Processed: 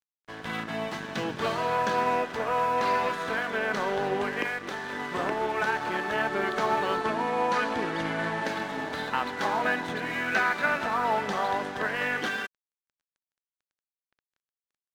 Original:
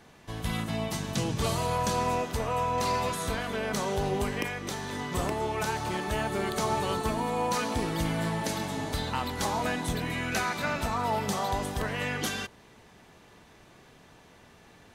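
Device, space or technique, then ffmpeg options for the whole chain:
pocket radio on a weak battery: -filter_complex "[0:a]highpass=260,lowpass=3100,aeval=exprs='sgn(val(0))*max(abs(val(0))-0.00447,0)':channel_layout=same,equalizer=frequency=1600:width_type=o:width=0.46:gain=7.5,asettb=1/sr,asplit=3[link_01][link_02][link_03];[link_01]atrim=end=7.014[link_04];[link_02]atrim=start=7.01:end=8.44,asetpts=PTS-STARTPTS,afade=type=in:duration=0.004:curve=qsin,afade=type=out:start_time=1.426:duration=0.004:curve=qsin,lowpass=frequency=12000:width=0.5412,lowpass=frequency=12000:width=1.3066[link_05];[link_03]atrim=start=8.436[link_06];[link_04][link_05]acrossfade=duration=0.004:curve1=hsin:curve2=qsin[link_07];[link_07][link_06]acrossfade=duration=0.004:curve1=qsin:curve2=hsin,volume=3.5dB"

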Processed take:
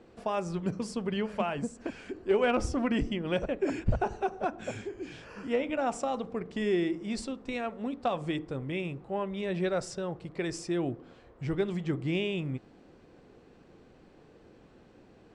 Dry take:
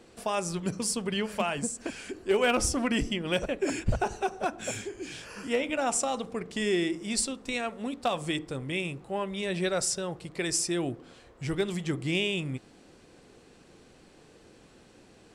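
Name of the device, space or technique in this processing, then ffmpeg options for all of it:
through cloth: -af "lowpass=6700,highshelf=frequency=2500:gain=-12.5"

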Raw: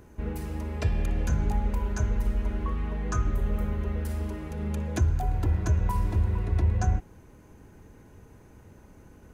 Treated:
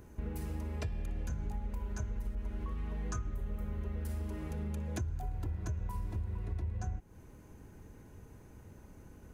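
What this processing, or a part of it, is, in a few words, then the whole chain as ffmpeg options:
ASMR close-microphone chain: -filter_complex "[0:a]lowshelf=frequency=240:gain=3.5,acompressor=threshold=-30dB:ratio=5,highshelf=frequency=6200:gain=4.5,asettb=1/sr,asplit=3[link_01][link_02][link_03];[link_01]atrim=end=2.354[link_04];[link_02]atrim=start=2.35:end=3.18,asetpts=PTS-STARTPTS,afade=type=in:duration=0.004:curve=qsin,afade=type=out:start_time=0.826:duration=0.004:curve=qsin,adynamicequalizer=threshold=0.00178:dfrequency=2900:dqfactor=0.7:tfrequency=2900:tqfactor=0.7:attack=5:release=100:ratio=0.375:range=1.5:mode=boostabove:tftype=highshelf[link_05];[link_03]atrim=start=3.176[link_06];[link_04][link_05]acrossfade=duration=0.004:curve1=hsin:curve2=qsin[link_07];[link_07][link_06]acrossfade=duration=0.004:curve1=qsin:curve2=hsin,volume=-4.5dB"

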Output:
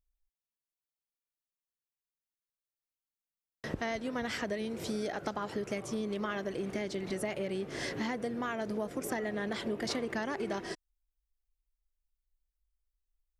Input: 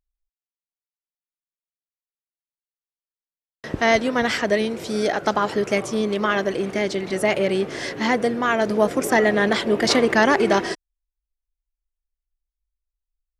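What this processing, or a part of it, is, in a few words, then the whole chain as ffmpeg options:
ASMR close-microphone chain: -af "lowshelf=frequency=200:gain=7.5,acompressor=threshold=-26dB:ratio=6,highshelf=frequency=11000:gain=7,volume=-6.5dB"

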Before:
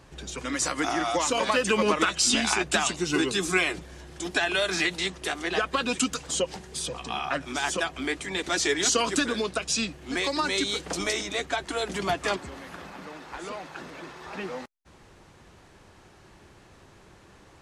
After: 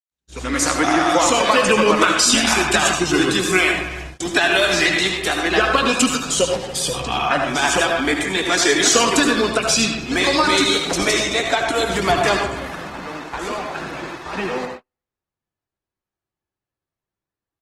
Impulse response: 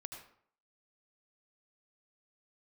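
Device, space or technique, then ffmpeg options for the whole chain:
speakerphone in a meeting room: -filter_complex "[1:a]atrim=start_sample=2205[link_01];[0:a][link_01]afir=irnorm=-1:irlink=0,asplit=2[link_02][link_03];[link_03]adelay=280,highpass=300,lowpass=3400,asoftclip=type=hard:threshold=-22dB,volume=-15dB[link_04];[link_02][link_04]amix=inputs=2:normalize=0,dynaudnorm=framelen=150:gausssize=5:maxgain=15dB,agate=range=-48dB:threshold=-31dB:ratio=16:detection=peak" -ar 48000 -c:a libopus -b:a 20k

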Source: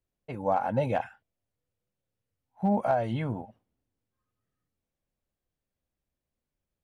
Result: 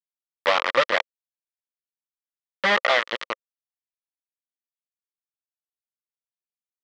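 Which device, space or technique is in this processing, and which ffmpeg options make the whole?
hand-held game console: -af "acrusher=bits=3:mix=0:aa=0.000001,highpass=440,equalizer=frequency=530:width_type=q:width=4:gain=6,equalizer=frequency=760:width_type=q:width=4:gain=-8,equalizer=frequency=1200:width_type=q:width=4:gain=9,equalizer=frequency=1900:width_type=q:width=4:gain=9,equalizer=frequency=3200:width_type=q:width=4:gain=5,lowpass=frequency=4700:width=0.5412,lowpass=frequency=4700:width=1.3066,volume=3.5dB"

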